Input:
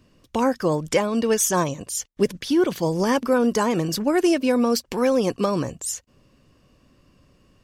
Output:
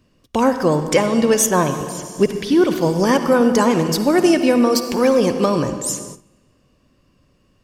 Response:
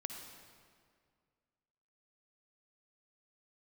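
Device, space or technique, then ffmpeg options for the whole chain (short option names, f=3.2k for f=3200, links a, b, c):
keyed gated reverb: -filter_complex "[0:a]asplit=3[a][b][c];[1:a]atrim=start_sample=2205[d];[b][d]afir=irnorm=-1:irlink=0[e];[c]apad=whole_len=336838[f];[e][f]sidechaingate=range=-18dB:threshold=-52dB:ratio=16:detection=peak,volume=6dB[g];[a][g]amix=inputs=2:normalize=0,asettb=1/sr,asplit=3[h][i][j];[h]atrim=end=1.464[k];[i]atrim=start=1.46:end=2.89,asetpts=PTS-STARTPTS,afade=t=in:d=0.004:c=qsin,afade=t=out:st=1.426:d=0.004:c=qsin,acrossover=split=3400[l][m];[m]acompressor=threshold=-29dB:ratio=4:attack=1:release=60[n];[l][n]amix=inputs=2:normalize=0[o];[j]atrim=start=2.886[p];[k][o]acrossfade=d=0.004:c1=hsin:c2=qsin[q];[q][p]acrossfade=d=0.004:c1=qsin:c2=hsin,volume=-3dB"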